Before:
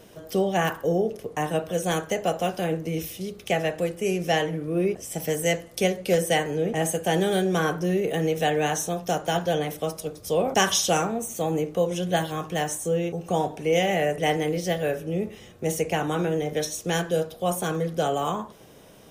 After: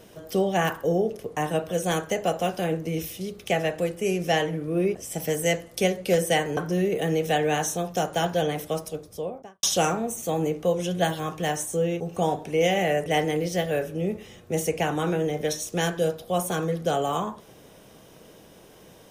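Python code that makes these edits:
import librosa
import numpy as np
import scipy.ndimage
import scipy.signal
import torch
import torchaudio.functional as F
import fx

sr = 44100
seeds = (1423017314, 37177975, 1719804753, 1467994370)

y = fx.studio_fade_out(x, sr, start_s=9.87, length_s=0.88)
y = fx.edit(y, sr, fx.cut(start_s=6.57, length_s=1.12), tone=tone)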